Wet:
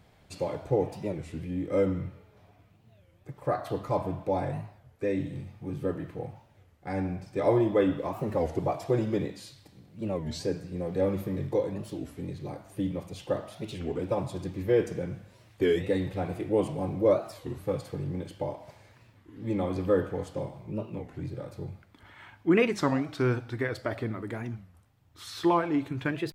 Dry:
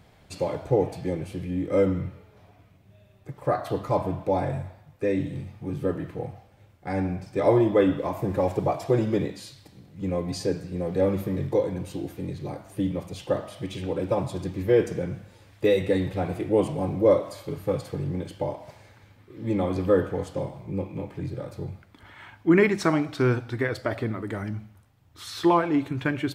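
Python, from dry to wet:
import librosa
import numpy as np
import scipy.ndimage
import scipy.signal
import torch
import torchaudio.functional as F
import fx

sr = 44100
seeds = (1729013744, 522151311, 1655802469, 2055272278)

y = fx.record_warp(x, sr, rpm=33.33, depth_cents=250.0)
y = y * librosa.db_to_amplitude(-4.0)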